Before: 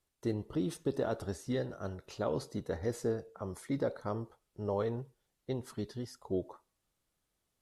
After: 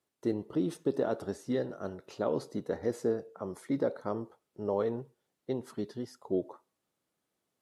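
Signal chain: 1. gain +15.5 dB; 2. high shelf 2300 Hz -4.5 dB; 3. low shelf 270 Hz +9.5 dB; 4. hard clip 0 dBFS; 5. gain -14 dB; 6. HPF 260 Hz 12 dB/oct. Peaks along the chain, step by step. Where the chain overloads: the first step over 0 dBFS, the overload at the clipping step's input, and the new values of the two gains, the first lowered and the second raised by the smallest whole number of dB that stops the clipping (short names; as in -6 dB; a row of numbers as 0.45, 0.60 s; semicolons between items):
-5.0, -5.5, -1.5, -1.5, -15.5, -17.5 dBFS; no overload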